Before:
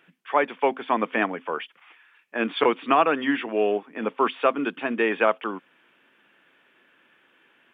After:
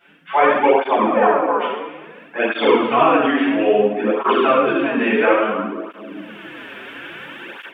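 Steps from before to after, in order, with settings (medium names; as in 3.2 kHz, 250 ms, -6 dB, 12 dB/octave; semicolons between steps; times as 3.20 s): 1.04–1.52 s: graphic EQ 125/250/500/1000/2000/4000 Hz -7/-4/+7/+11/-9/-7 dB; reverberation RT60 1.1 s, pre-delay 6 ms, DRR -10.5 dB; level rider gain up to 14.5 dB; cancelling through-zero flanger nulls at 0.59 Hz, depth 6.7 ms; trim +1.5 dB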